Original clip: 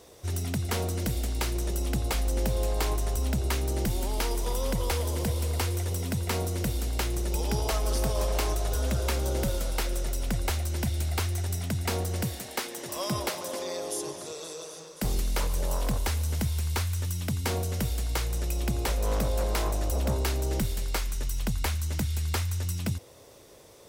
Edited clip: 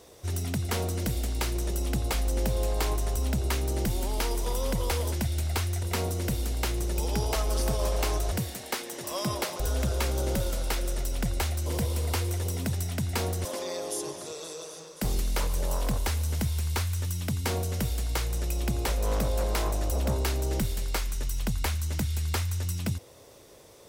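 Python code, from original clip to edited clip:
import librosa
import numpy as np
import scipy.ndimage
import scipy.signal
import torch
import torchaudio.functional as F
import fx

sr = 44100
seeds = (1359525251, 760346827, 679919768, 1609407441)

y = fx.edit(x, sr, fx.swap(start_s=5.12, length_s=1.07, other_s=10.74, other_length_s=0.71),
    fx.move(start_s=12.17, length_s=1.28, to_s=8.68), tone=tone)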